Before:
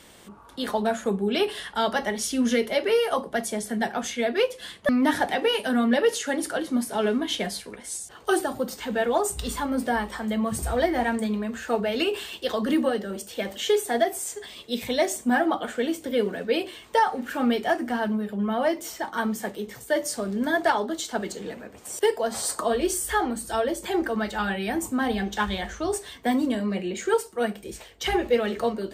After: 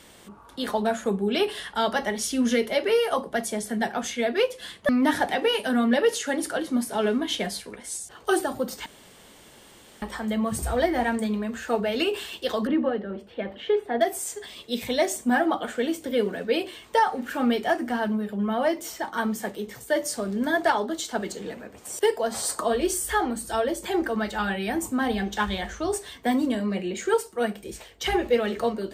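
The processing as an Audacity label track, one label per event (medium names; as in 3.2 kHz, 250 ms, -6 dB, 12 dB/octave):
8.860000	10.020000	room tone
12.670000	14.010000	distance through air 450 m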